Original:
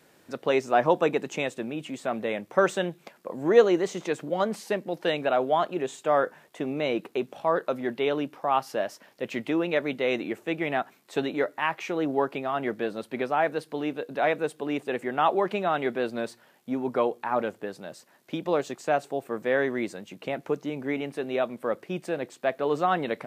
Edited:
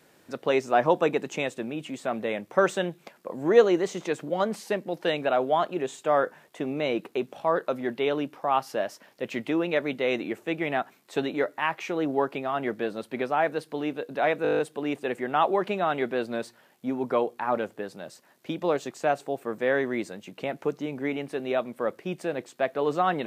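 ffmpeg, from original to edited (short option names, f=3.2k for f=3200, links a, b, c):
-filter_complex "[0:a]asplit=9[a][b][c][d][e][f][g][h][i];[a]atrim=end=14.452[j];[b]atrim=start=14.428:end=14.452[k];[c]atrim=start=14.428:end=14.452[l];[d]atrim=start=14.428:end=14.452[m];[e]atrim=start=14.428:end=14.452[n];[f]atrim=start=14.428:end=14.452[o];[g]atrim=start=14.428:end=14.452[p];[h]atrim=start=14.428:end=14.452[q];[i]atrim=start=14.428[r];[j][k]acrossfade=d=0.004:c1=hsin:c2=hsin[s];[s][l]acrossfade=d=0.004:c1=hsin:c2=hsin[t];[t][m]acrossfade=d=0.004:c1=hsin:c2=hsin[u];[u][n]acrossfade=d=0.004:c1=hsin:c2=hsin[v];[v][o]acrossfade=d=0.004:c1=hsin:c2=hsin[w];[w][p]acrossfade=d=0.004:c1=hsin:c2=hsin[x];[x][q]acrossfade=d=0.004:c1=hsin:c2=hsin[y];[y][r]acrossfade=d=0.004:c1=hsin:c2=hsin"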